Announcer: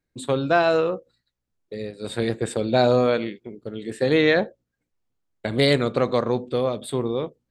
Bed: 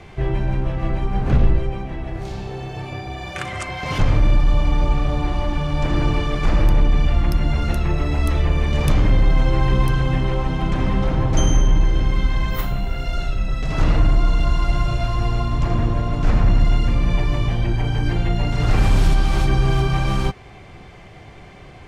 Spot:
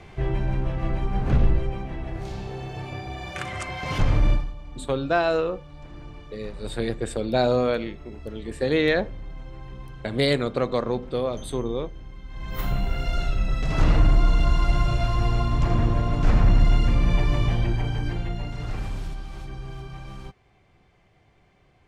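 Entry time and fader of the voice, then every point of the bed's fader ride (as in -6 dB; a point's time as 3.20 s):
4.60 s, -3.0 dB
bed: 4.32 s -4 dB
4.55 s -22.5 dB
12.24 s -22.5 dB
12.68 s -2 dB
17.54 s -2 dB
19.27 s -19 dB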